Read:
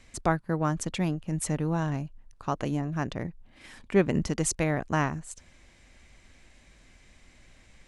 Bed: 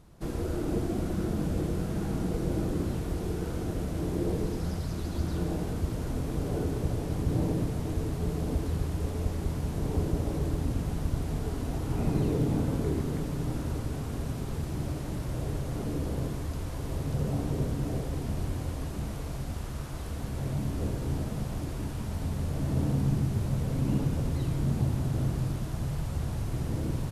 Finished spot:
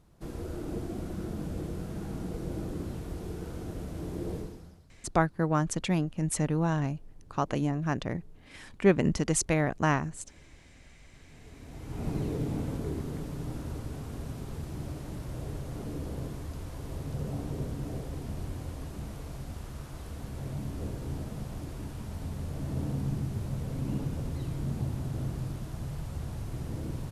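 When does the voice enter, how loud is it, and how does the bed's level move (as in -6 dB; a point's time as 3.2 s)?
4.90 s, +0.5 dB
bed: 4.37 s -6 dB
4.93 s -29.5 dB
11.03 s -29.5 dB
12.07 s -5 dB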